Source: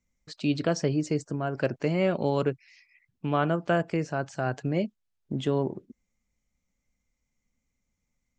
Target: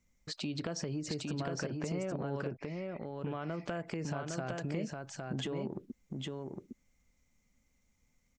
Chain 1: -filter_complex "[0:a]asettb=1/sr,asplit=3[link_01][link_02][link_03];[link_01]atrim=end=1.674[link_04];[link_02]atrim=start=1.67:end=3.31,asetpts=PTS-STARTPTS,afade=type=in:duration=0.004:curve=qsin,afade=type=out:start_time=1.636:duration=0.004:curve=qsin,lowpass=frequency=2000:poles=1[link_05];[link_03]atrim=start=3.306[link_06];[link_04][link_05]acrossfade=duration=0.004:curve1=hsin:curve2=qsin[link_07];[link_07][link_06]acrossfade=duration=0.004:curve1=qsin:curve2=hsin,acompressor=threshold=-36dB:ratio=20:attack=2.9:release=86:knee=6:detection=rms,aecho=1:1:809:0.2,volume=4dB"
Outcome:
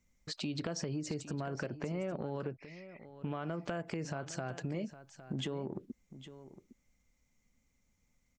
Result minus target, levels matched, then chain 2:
echo-to-direct −11 dB
-filter_complex "[0:a]asettb=1/sr,asplit=3[link_01][link_02][link_03];[link_01]atrim=end=1.674[link_04];[link_02]atrim=start=1.67:end=3.31,asetpts=PTS-STARTPTS,afade=type=in:duration=0.004:curve=qsin,afade=type=out:start_time=1.636:duration=0.004:curve=qsin,lowpass=frequency=2000:poles=1[link_05];[link_03]atrim=start=3.306[link_06];[link_04][link_05]acrossfade=duration=0.004:curve1=hsin:curve2=qsin[link_07];[link_07][link_06]acrossfade=duration=0.004:curve1=qsin:curve2=hsin,acompressor=threshold=-36dB:ratio=20:attack=2.9:release=86:knee=6:detection=rms,aecho=1:1:809:0.708,volume=4dB"

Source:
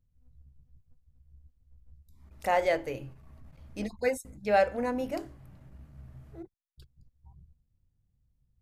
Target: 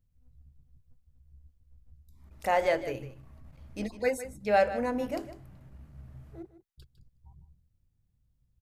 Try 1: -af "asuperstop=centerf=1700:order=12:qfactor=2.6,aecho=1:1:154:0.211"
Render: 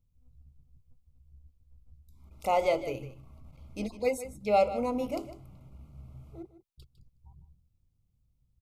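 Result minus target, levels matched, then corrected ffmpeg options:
2,000 Hz band −6.0 dB
-af "aecho=1:1:154:0.211"

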